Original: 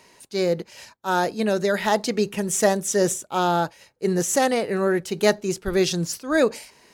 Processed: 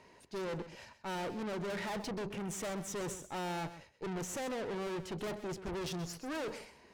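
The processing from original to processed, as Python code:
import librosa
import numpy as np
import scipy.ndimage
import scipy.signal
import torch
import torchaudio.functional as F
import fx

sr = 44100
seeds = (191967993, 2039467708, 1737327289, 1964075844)

p1 = fx.lowpass(x, sr, hz=1700.0, slope=6)
p2 = fx.peak_eq(p1, sr, hz=69.0, db=7.0, octaves=0.77)
p3 = fx.tube_stage(p2, sr, drive_db=35.0, bias=0.5)
p4 = p3 + fx.echo_single(p3, sr, ms=129, db=-13.0, dry=0)
y = F.gain(torch.from_numpy(p4), -2.0).numpy()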